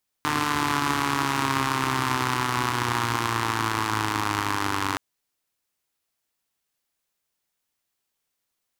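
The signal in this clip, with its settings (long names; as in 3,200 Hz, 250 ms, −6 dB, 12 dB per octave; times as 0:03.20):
pulse-train model of a four-cylinder engine, changing speed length 4.72 s, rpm 4,500, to 2,900, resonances 120/290/1,000 Hz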